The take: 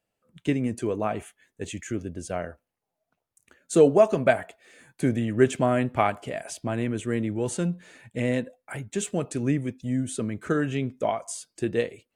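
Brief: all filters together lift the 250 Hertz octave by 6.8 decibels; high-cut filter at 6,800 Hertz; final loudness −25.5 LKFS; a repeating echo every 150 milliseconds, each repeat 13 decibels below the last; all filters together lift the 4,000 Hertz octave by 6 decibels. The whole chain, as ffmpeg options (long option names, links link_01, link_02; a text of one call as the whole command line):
ffmpeg -i in.wav -af "lowpass=6800,equalizer=frequency=250:width_type=o:gain=8,equalizer=frequency=4000:width_type=o:gain=8.5,aecho=1:1:150|300|450:0.224|0.0493|0.0108,volume=-3dB" out.wav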